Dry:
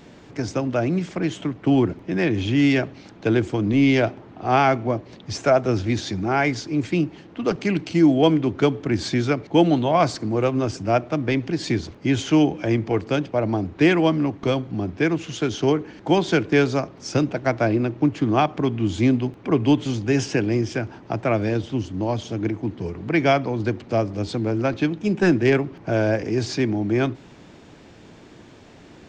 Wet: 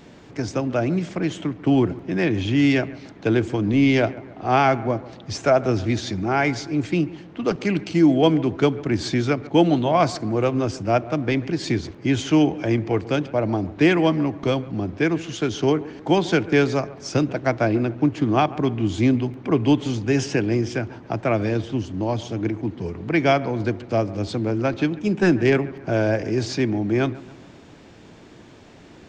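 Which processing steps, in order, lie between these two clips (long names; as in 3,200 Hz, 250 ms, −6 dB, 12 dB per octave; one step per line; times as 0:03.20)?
bucket-brigade delay 140 ms, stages 2,048, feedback 48%, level −19 dB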